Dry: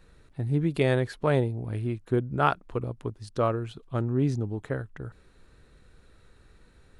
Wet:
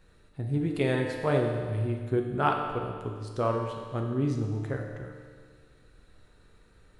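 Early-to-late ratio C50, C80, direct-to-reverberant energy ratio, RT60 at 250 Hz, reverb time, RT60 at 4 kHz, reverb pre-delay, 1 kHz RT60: 3.5 dB, 5.0 dB, 1.5 dB, 1.8 s, 1.8 s, 1.8 s, 8 ms, 1.8 s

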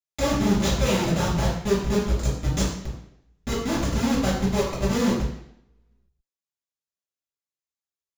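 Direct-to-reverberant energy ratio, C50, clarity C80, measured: −8.5 dB, 3.0 dB, 6.0 dB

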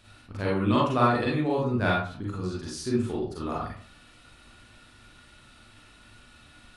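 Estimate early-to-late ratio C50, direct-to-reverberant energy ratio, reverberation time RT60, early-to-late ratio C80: 1.0 dB, −6.0 dB, 0.45 s, 7.0 dB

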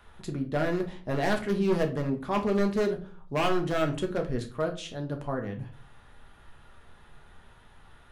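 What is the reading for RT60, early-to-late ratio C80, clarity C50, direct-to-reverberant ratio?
0.40 s, 17.5 dB, 12.0 dB, 3.0 dB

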